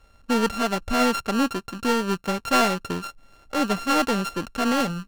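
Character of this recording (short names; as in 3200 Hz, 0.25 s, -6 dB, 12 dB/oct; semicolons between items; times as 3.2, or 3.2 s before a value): a buzz of ramps at a fixed pitch in blocks of 32 samples; IMA ADPCM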